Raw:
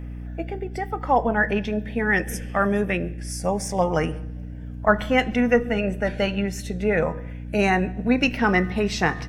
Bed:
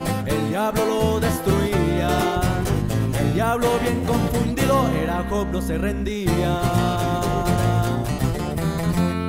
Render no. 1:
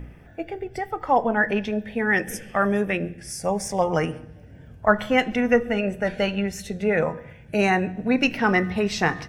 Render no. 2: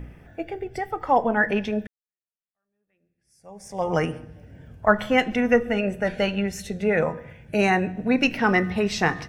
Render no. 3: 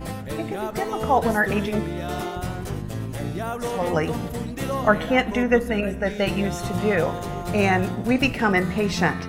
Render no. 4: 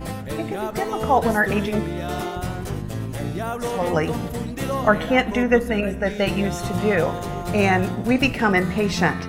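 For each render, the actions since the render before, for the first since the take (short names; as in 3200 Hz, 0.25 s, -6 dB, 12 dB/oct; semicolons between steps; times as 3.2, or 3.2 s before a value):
de-hum 60 Hz, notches 5
1.87–3.91 fade in exponential
add bed -8.5 dB
gain +1.5 dB; limiter -2 dBFS, peak gain reduction 1 dB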